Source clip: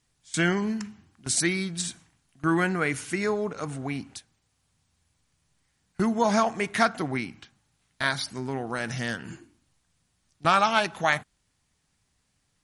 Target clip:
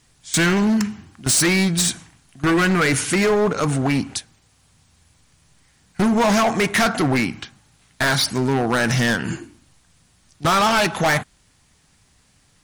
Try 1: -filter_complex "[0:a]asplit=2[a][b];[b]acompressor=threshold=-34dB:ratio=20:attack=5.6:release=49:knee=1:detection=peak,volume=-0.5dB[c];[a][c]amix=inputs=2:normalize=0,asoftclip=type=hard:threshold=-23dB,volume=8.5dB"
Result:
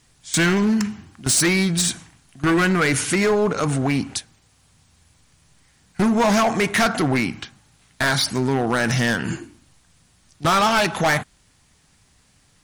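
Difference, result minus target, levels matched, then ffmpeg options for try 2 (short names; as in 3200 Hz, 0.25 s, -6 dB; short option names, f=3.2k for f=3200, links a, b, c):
compressor: peak gain reduction +8 dB
-filter_complex "[0:a]asplit=2[a][b];[b]acompressor=threshold=-25.5dB:ratio=20:attack=5.6:release=49:knee=1:detection=peak,volume=-0.5dB[c];[a][c]amix=inputs=2:normalize=0,asoftclip=type=hard:threshold=-23dB,volume=8.5dB"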